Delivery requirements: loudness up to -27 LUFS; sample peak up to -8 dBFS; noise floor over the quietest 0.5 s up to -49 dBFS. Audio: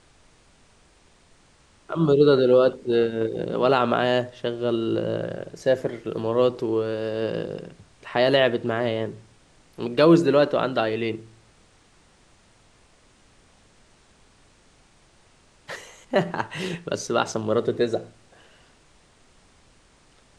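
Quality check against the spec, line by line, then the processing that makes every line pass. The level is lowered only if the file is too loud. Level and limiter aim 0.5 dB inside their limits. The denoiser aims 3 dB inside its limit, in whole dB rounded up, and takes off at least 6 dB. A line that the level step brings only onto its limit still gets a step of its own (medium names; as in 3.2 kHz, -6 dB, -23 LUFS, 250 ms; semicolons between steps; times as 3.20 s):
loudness -23.0 LUFS: fail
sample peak -5.5 dBFS: fail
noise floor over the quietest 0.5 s -57 dBFS: pass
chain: trim -4.5 dB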